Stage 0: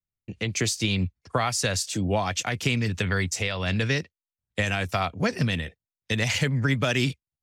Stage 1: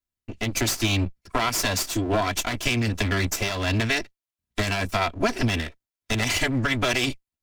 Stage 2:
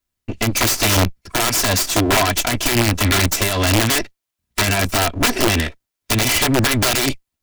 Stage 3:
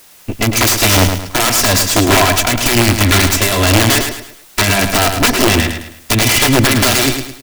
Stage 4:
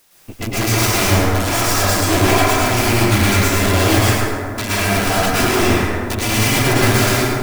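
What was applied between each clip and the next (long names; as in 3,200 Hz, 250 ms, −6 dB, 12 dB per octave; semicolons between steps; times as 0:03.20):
lower of the sound and its delayed copy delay 3 ms; level +3.5 dB
in parallel at −1.5 dB: brickwall limiter −20.5 dBFS, peak gain reduction 11 dB; on the sum: wrap-around overflow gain 14 dB; level +4.5 dB
background noise white −48 dBFS; on a send: repeating echo 107 ms, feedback 37%, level −7 dB; on the sum: level +4.5 dB
dense smooth reverb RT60 2.2 s, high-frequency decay 0.3×, pre-delay 100 ms, DRR −9.5 dB; level −12.5 dB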